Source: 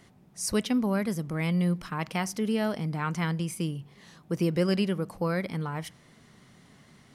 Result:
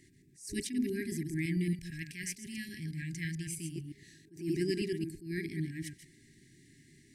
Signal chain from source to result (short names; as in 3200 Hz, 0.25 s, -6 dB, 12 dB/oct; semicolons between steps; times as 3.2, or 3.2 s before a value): reverse delay 0.112 s, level -6 dB; thirty-one-band EQ 200 Hz -9 dB, 315 Hz +7 dB, 3150 Hz -8 dB, 8000 Hz +7 dB; FFT band-reject 410–1600 Hz; 1.73–3.76 bell 340 Hz -12 dB 1.1 oct; attack slew limiter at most 140 dB/s; gain -4 dB